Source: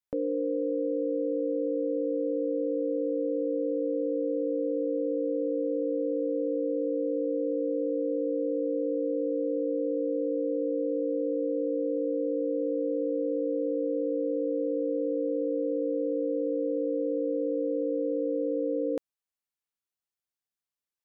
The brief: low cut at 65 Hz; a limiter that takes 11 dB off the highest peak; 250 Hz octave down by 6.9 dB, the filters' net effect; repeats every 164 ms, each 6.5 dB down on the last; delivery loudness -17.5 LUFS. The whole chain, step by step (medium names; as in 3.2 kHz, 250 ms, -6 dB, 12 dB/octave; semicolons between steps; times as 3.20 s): high-pass 65 Hz; peaking EQ 250 Hz -8.5 dB; peak limiter -35 dBFS; feedback delay 164 ms, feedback 47%, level -6.5 dB; trim +25 dB